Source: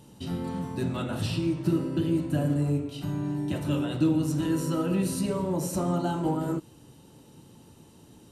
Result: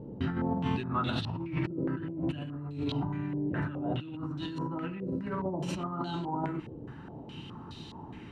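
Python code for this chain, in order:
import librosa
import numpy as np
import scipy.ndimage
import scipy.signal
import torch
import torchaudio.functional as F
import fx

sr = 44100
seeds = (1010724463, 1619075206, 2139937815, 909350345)

y = fx.peak_eq(x, sr, hz=540.0, db=-9.0, octaves=0.52)
y = fx.over_compress(y, sr, threshold_db=-36.0, ratio=-1.0)
y = fx.filter_held_lowpass(y, sr, hz=4.8, low_hz=510.0, high_hz=3900.0)
y = y * librosa.db_to_amplitude(1.0)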